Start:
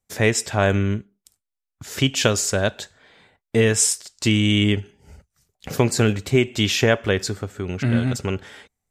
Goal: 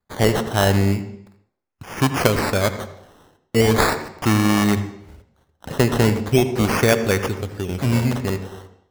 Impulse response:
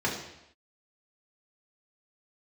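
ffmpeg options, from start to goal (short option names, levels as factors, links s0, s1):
-filter_complex "[0:a]acrusher=samples=15:mix=1:aa=0.000001:lfo=1:lforange=9:lforate=0.39,asplit=2[s0][s1];[1:a]atrim=start_sample=2205,asetrate=48510,aresample=44100,adelay=77[s2];[s1][s2]afir=irnorm=-1:irlink=0,volume=0.0944[s3];[s0][s3]amix=inputs=2:normalize=0,volume=1.12"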